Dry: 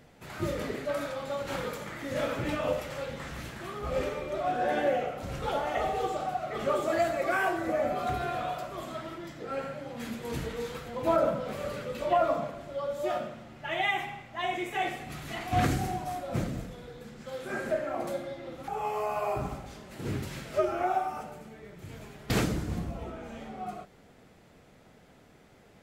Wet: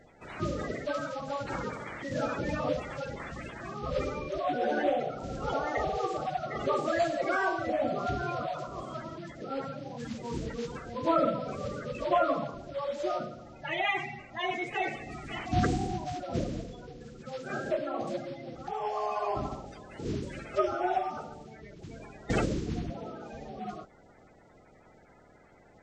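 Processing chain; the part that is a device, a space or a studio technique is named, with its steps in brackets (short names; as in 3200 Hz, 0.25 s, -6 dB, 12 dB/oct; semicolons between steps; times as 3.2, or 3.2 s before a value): clip after many re-uploads (LPF 6500 Hz 24 dB/oct; bin magnitudes rounded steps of 30 dB); 22.9–23.33 HPF 140 Hz 12 dB/oct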